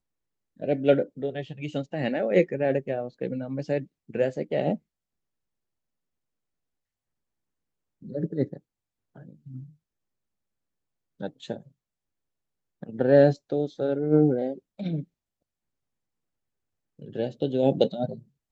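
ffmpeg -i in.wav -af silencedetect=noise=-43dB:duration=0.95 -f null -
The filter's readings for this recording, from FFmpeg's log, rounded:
silence_start: 4.77
silence_end: 8.02 | silence_duration: 3.25
silence_start: 9.66
silence_end: 11.20 | silence_duration: 1.54
silence_start: 11.67
silence_end: 12.83 | silence_duration: 1.15
silence_start: 15.04
silence_end: 16.99 | silence_duration: 1.95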